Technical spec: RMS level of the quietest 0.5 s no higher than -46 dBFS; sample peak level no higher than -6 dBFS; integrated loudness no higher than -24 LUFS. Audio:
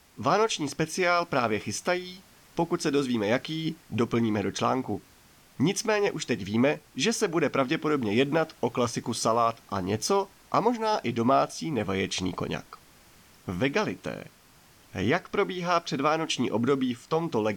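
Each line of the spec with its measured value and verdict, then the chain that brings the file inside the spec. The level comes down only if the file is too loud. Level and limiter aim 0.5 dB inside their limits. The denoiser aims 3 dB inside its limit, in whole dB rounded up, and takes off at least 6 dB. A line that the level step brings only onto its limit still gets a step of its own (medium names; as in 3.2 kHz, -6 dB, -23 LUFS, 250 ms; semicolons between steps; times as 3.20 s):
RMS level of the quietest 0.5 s -57 dBFS: pass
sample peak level -11.0 dBFS: pass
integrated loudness -27.5 LUFS: pass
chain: none needed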